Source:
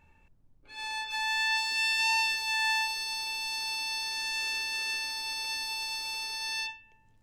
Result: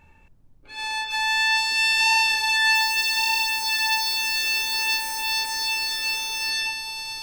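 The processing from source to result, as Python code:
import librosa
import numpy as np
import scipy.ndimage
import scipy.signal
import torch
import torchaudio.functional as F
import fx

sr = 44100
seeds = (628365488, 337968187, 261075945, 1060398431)

y = fx.dmg_noise_colour(x, sr, seeds[0], colour='violet', level_db=-44.0, at=(2.74, 5.32), fade=0.02)
y = y + 10.0 ** (-5.0 / 20.0) * np.pad(y, (int(1169 * sr / 1000.0), 0))[:len(y)]
y = y * 10.0 ** (7.5 / 20.0)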